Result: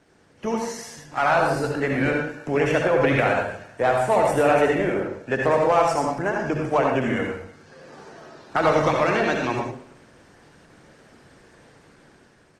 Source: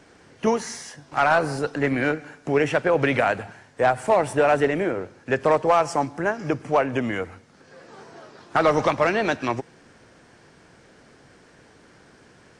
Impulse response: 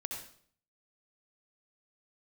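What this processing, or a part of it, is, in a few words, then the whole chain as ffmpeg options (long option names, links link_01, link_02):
speakerphone in a meeting room: -filter_complex "[1:a]atrim=start_sample=2205[link_01];[0:a][link_01]afir=irnorm=-1:irlink=0,asplit=2[link_02][link_03];[link_03]adelay=320,highpass=300,lowpass=3400,asoftclip=type=hard:threshold=-16dB,volume=-27dB[link_04];[link_02][link_04]amix=inputs=2:normalize=0,dynaudnorm=framelen=160:gausssize=11:maxgain=6.5dB,volume=-4dB" -ar 48000 -c:a libopus -b:a 20k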